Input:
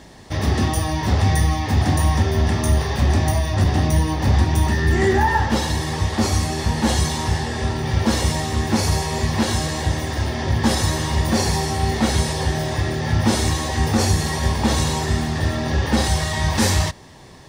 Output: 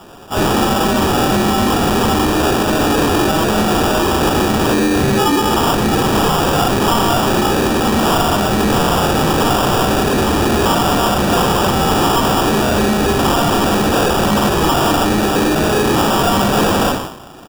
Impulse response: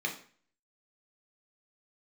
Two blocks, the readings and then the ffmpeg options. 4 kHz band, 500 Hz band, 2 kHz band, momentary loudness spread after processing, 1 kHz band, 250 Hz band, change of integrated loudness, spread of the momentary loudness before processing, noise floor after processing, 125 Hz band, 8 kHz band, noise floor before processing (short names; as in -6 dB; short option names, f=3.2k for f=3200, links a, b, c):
+7.0 dB, +10.5 dB, +6.0 dB, 1 LU, +10.0 dB, +8.0 dB, +6.0 dB, 5 LU, -19 dBFS, -1.5 dB, +4.0 dB, -32 dBFS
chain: -filter_complex "[0:a]highpass=f=500:w=0.5412,highpass=f=500:w=1.3066,aecho=1:1:1.2:0.69,asplit=2[a][b];[b]alimiter=limit=-16dB:level=0:latency=1:release=26,volume=2.5dB[c];[a][c]amix=inputs=2:normalize=0,afwtdn=0.0708,highshelf=f=1.8k:t=q:w=1.5:g=11.5[d];[1:a]atrim=start_sample=2205,asetrate=41454,aresample=44100[e];[d][e]afir=irnorm=-1:irlink=0,acrusher=samples=21:mix=1:aa=0.000001,acompressor=threshold=-12dB:ratio=6,asoftclip=type=tanh:threshold=-14.5dB,volume=5dB"